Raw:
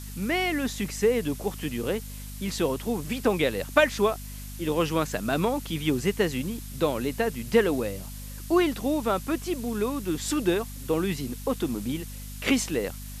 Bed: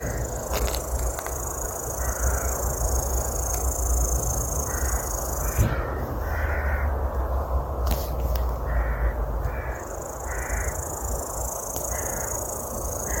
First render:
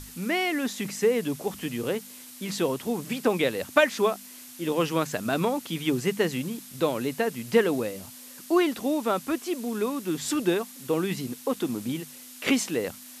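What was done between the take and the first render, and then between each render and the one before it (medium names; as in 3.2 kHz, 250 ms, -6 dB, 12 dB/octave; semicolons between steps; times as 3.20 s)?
hum notches 50/100/150/200 Hz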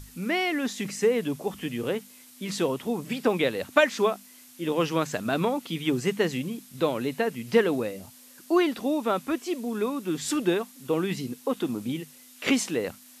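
noise print and reduce 6 dB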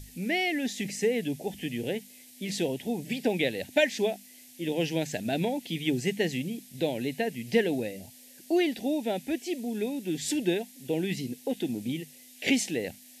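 Chebyshev band-stop 740–1900 Hz, order 2; dynamic bell 490 Hz, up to -4 dB, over -38 dBFS, Q 1.4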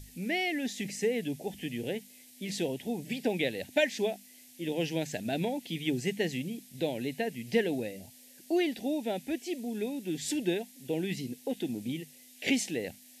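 trim -3 dB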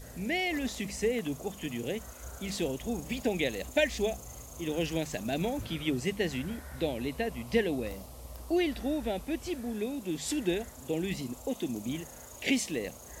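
add bed -20.5 dB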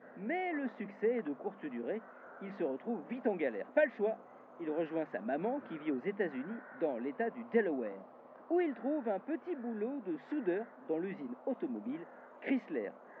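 elliptic band-pass 210–1600 Hz, stop band 70 dB; tilt EQ +2 dB/octave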